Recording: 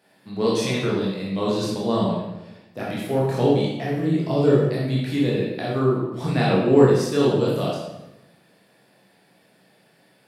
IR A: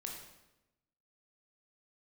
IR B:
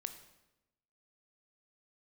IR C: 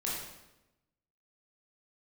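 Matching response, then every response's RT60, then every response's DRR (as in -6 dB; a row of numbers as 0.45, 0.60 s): C; 0.95, 0.95, 0.95 s; -0.5, 8.0, -6.0 dB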